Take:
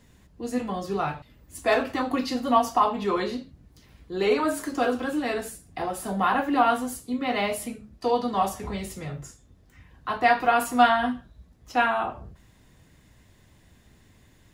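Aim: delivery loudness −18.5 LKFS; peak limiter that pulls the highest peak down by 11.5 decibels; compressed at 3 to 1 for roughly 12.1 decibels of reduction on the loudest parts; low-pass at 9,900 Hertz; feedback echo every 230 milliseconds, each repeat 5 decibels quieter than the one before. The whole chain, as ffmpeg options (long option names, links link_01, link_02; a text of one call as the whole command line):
ffmpeg -i in.wav -af "lowpass=9900,acompressor=threshold=-31dB:ratio=3,alimiter=level_in=6dB:limit=-24dB:level=0:latency=1,volume=-6dB,aecho=1:1:230|460|690|920|1150|1380|1610:0.562|0.315|0.176|0.0988|0.0553|0.031|0.0173,volume=19.5dB" out.wav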